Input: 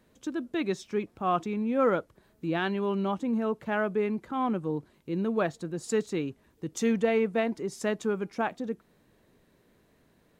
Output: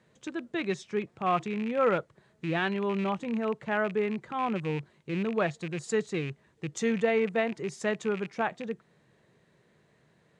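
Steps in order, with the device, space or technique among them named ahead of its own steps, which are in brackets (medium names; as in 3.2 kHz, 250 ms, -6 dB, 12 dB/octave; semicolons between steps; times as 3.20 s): car door speaker with a rattle (rattle on loud lows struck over -36 dBFS, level -31 dBFS; cabinet simulation 98–8500 Hz, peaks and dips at 140 Hz +7 dB, 270 Hz -9 dB, 1.9 kHz +4 dB, 5.3 kHz -3 dB)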